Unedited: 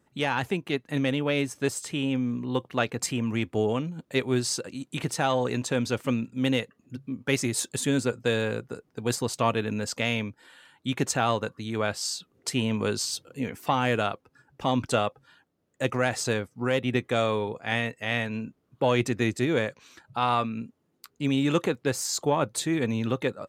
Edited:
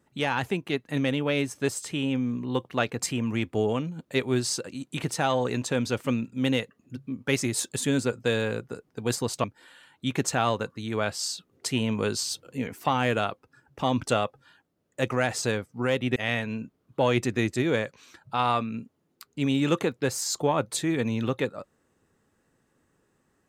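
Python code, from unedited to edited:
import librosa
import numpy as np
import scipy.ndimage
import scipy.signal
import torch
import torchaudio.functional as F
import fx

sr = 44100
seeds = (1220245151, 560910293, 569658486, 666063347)

y = fx.edit(x, sr, fx.cut(start_s=9.44, length_s=0.82),
    fx.cut(start_s=16.98, length_s=1.01), tone=tone)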